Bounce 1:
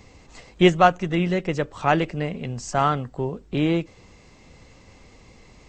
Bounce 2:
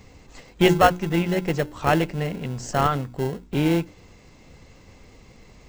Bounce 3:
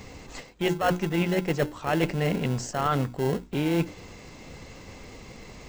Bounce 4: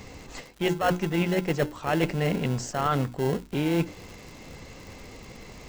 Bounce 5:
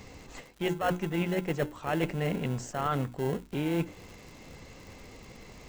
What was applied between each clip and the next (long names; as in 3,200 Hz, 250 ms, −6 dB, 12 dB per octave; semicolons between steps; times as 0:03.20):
mains-hum notches 60/120/180/240/300/360 Hz; in parallel at −7.5 dB: sample-rate reduction 1,200 Hz, jitter 0%; on the sum: level −1 dB
low-shelf EQ 130 Hz −5.5 dB; reversed playback; downward compressor 16 to 1, threshold −28 dBFS, peak gain reduction 19 dB; reversed playback; level +7 dB
surface crackle 95 per second −37 dBFS
dynamic equaliser 4,900 Hz, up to −6 dB, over −54 dBFS, Q 2.1; level −4.5 dB